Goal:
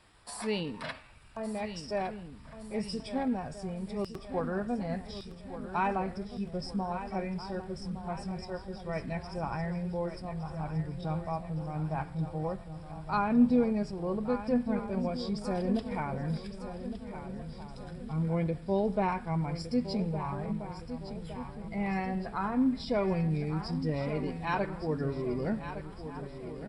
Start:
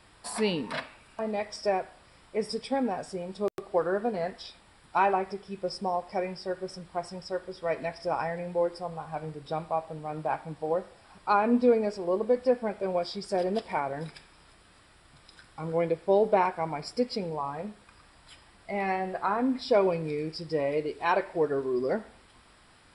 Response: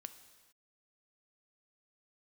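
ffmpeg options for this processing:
-filter_complex "[0:a]asplit=2[link_01][link_02];[link_02]adelay=1399,volume=-13dB,highshelf=frequency=4000:gain=-31.5[link_03];[link_01][link_03]amix=inputs=2:normalize=0,atempo=0.86,asplit=2[link_04][link_05];[link_05]aecho=0:1:1162|2324|3486|4648|5810|6972:0.282|0.147|0.0762|0.0396|0.0206|0.0107[link_06];[link_04][link_06]amix=inputs=2:normalize=0,asubboost=boost=8:cutoff=160,volume=-4.5dB"

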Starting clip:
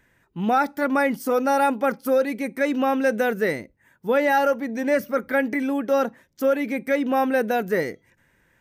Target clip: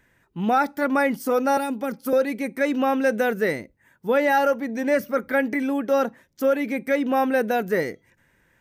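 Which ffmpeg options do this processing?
ffmpeg -i in.wav -filter_complex "[0:a]asettb=1/sr,asplit=3[link_01][link_02][link_03];[link_01]atrim=end=1.574[link_04];[link_02]atrim=start=1.57:end=2.13,asetpts=PTS-STARTPTS,afade=type=in:duration=0.004:curve=qsin,afade=type=out:start_time=0.556:duration=0.004:curve=qsin,acrossover=split=370|3000[link_05][link_06][link_07];[link_06]acompressor=threshold=-29dB:ratio=6[link_08];[link_05][link_08][link_07]amix=inputs=3:normalize=0[link_09];[link_03]atrim=start=2.126[link_10];[link_04][link_09]acrossfade=duration=0.004:curve1=hsin:curve2=qsin[link_11];[link_11][link_10]acrossfade=duration=0.004:curve1=qsin:curve2=hsin" out.wav

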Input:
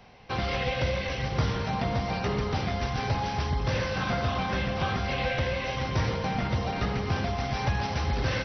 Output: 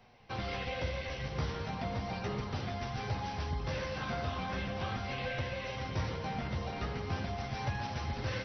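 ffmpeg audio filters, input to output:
ffmpeg -i in.wav -af "flanger=delay=8.3:depth=5.1:regen=-35:speed=0.38:shape=sinusoidal,volume=-4.5dB" out.wav

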